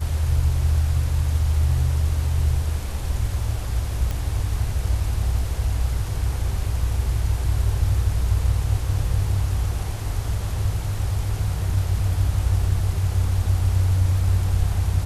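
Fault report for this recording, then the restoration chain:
0:04.11: click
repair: click removal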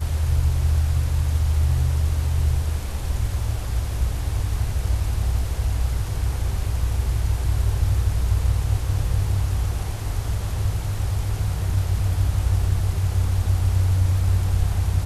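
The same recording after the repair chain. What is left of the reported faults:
none of them is left

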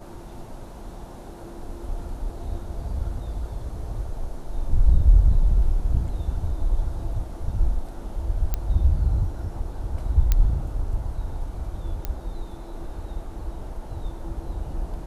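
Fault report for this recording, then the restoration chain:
0:08.54: click −11 dBFS
0:10.32: click −7 dBFS
0:12.05: click −14 dBFS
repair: click removal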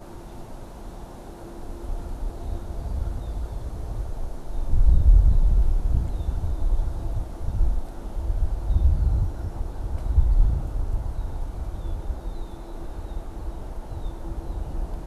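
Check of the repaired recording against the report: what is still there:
none of them is left

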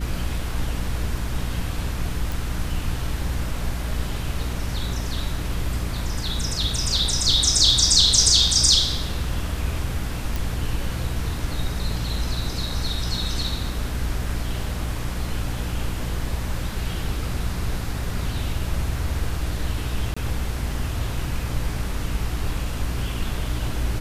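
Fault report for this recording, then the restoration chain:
mains hum 60 Hz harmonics 5 −29 dBFS
0:02.32: click
0:10.36: click
0:20.14–0:20.16: drop-out 25 ms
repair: click removal
hum removal 60 Hz, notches 5
repair the gap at 0:20.14, 25 ms

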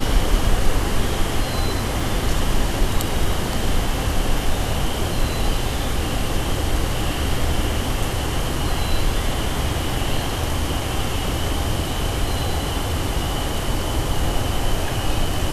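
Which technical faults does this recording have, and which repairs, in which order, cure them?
0:02.00: drop-out 2.6 ms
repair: repair the gap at 0:02.00, 2.6 ms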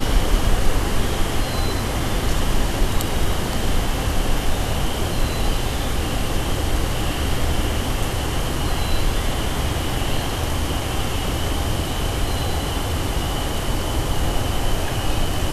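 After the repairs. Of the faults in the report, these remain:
none of them is left

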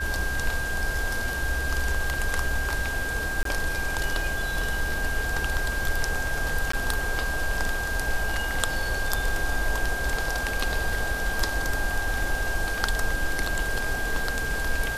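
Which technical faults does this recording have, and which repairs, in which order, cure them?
whistle 1,600 Hz −29 dBFS
0:03.43–0:03.45: drop-out 23 ms
0:06.72–0:06.73: drop-out 14 ms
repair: notch filter 1,600 Hz, Q 30
repair the gap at 0:03.43, 23 ms
repair the gap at 0:06.72, 14 ms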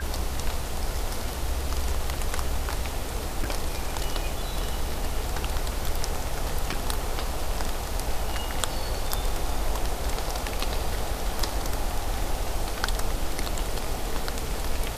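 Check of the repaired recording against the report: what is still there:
none of them is left

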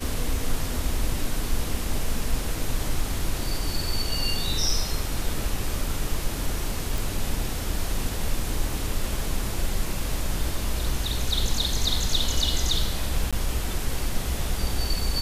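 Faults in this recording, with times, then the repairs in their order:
0:06.98: click
0:13.31–0:13.33: drop-out 16 ms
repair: click removal
repair the gap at 0:13.31, 16 ms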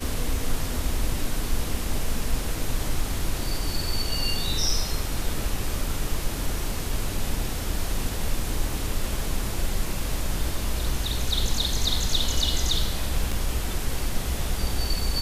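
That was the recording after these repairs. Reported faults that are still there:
none of them is left

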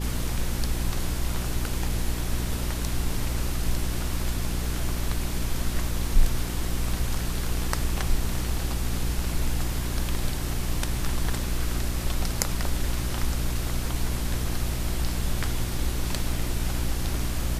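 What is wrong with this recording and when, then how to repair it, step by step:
mains hum 60 Hz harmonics 6 −30 dBFS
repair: hum removal 60 Hz, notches 6

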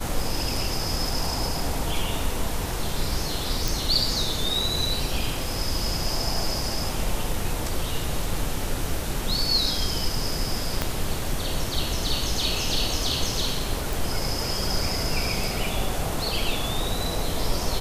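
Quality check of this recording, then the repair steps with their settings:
0:03.68: click
0:10.82: click −8 dBFS
0:13.93: click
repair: click removal

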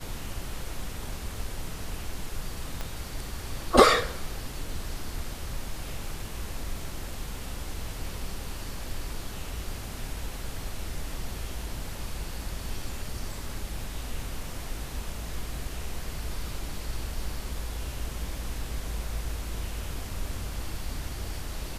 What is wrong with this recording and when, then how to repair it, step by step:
0:02.81: click −18 dBFS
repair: click removal

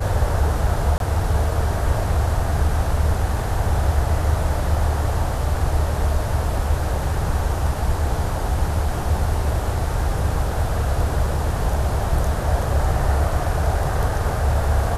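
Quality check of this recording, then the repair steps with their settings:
0:00.98–0:01.00: drop-out 22 ms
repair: repair the gap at 0:00.98, 22 ms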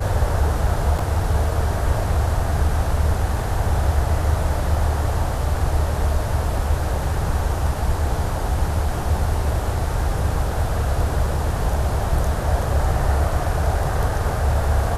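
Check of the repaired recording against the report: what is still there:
none of them is left

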